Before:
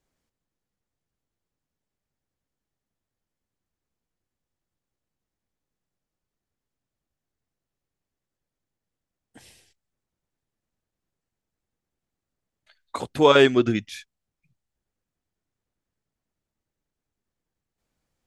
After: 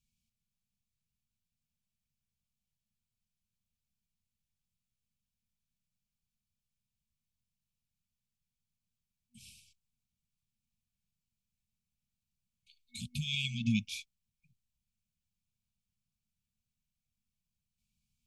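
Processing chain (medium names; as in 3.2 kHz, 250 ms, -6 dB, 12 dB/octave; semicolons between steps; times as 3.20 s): peak limiter -13 dBFS, peak gain reduction 9.5 dB; FFT band-reject 240–2200 Hz; trim -2.5 dB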